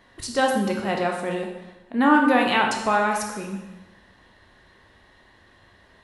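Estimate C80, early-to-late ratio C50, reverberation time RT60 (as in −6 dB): 7.0 dB, 4.5 dB, 0.95 s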